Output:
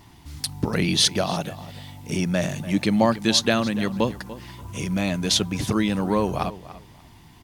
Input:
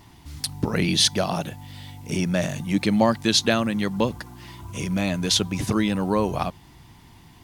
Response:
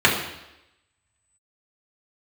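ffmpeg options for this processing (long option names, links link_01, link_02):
-filter_complex "[0:a]asplit=2[link_01][link_02];[link_02]adelay=291,lowpass=frequency=4200:poles=1,volume=-15.5dB,asplit=2[link_03][link_04];[link_04]adelay=291,lowpass=frequency=4200:poles=1,volume=0.18[link_05];[link_01][link_03][link_05]amix=inputs=3:normalize=0"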